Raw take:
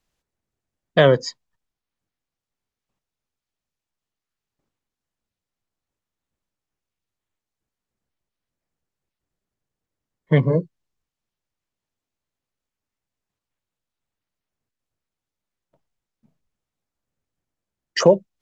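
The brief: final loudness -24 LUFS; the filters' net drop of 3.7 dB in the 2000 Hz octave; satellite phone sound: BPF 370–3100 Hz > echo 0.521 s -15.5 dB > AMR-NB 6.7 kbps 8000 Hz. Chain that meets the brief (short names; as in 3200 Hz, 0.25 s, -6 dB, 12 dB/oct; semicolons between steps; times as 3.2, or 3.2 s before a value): BPF 370–3100 Hz; bell 2000 Hz -4 dB; echo 0.521 s -15.5 dB; gain -1.5 dB; AMR-NB 6.7 kbps 8000 Hz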